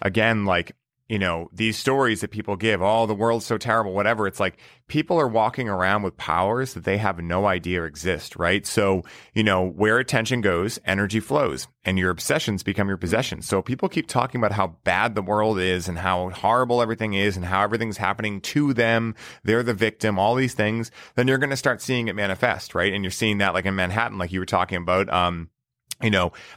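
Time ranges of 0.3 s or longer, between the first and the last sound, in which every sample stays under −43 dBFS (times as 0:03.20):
0:00.71–0:01.10
0:25.46–0:25.91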